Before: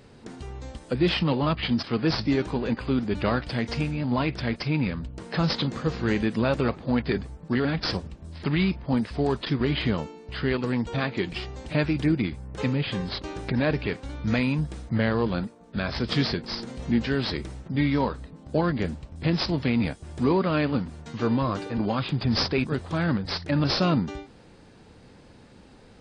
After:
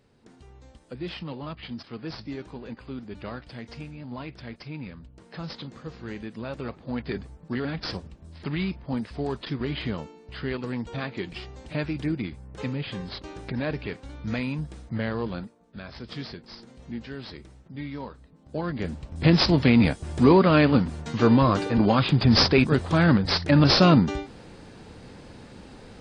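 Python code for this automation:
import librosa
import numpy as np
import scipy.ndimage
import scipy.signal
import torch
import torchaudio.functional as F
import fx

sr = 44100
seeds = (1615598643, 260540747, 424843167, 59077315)

y = fx.gain(x, sr, db=fx.line((6.37, -12.0), (7.17, -5.0), (15.29, -5.0), (15.83, -12.0), (18.26, -12.0), (18.82, -3.0), (19.24, 6.0)))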